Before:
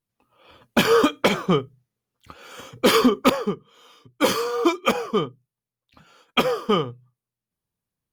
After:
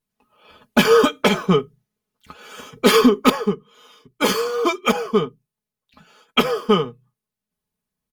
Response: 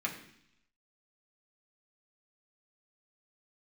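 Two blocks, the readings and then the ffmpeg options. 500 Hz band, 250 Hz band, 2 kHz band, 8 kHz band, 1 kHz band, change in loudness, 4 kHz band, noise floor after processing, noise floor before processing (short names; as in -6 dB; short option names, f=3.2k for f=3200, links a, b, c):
+3.5 dB, +3.0 dB, +3.0 dB, +2.5 dB, +2.0 dB, +3.0 dB, +2.5 dB, under -85 dBFS, under -85 dBFS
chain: -af "aecho=1:1:4.7:0.65,volume=1dB"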